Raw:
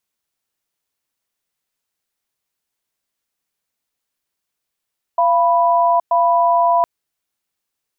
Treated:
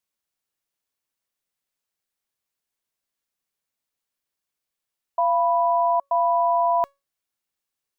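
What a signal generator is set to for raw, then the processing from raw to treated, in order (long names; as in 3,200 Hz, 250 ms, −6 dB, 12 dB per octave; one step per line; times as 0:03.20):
tone pair in a cadence 687 Hz, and 987 Hz, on 0.82 s, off 0.11 s, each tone −14 dBFS 1.66 s
tuned comb filter 560 Hz, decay 0.24 s, harmonics all, mix 50%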